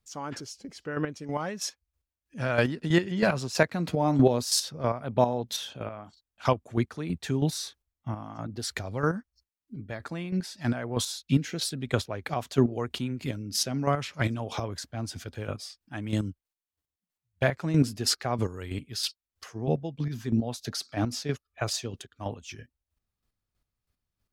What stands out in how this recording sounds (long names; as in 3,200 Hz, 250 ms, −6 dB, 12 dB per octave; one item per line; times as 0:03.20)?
chopped level 3.1 Hz, depth 60%, duty 25%